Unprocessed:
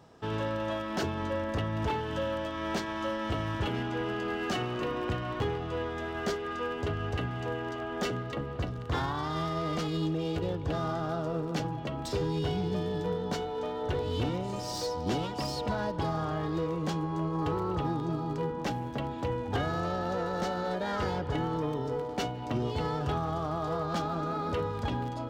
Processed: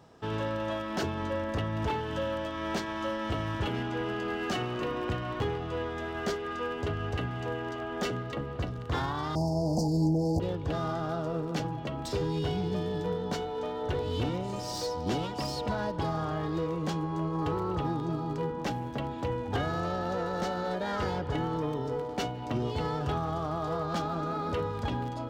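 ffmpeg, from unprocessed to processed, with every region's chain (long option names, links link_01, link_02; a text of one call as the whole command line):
ffmpeg -i in.wav -filter_complex "[0:a]asettb=1/sr,asplit=3[link_01][link_02][link_03];[link_01]atrim=end=9.354[link_04];[link_02]atrim=start=9.35:end=10.4,asetpts=PTS-STARTPTS,afade=type=in:duration=0.004:curve=qsin,afade=type=out:start_time=1.046:duration=0.004:curve=qsin,equalizer=frequency=410:width=6.1:gain=-13,acontrast=47,asuperstop=centerf=2100:order=20:qfactor=0.57[link_05];[link_03]atrim=start=10.396[link_06];[link_04][link_05]acrossfade=duration=0.004:curve1=hsin:curve2=qsin[link_07];[link_07][link_06]acrossfade=duration=0.004:curve1=qsin:curve2=hsin" out.wav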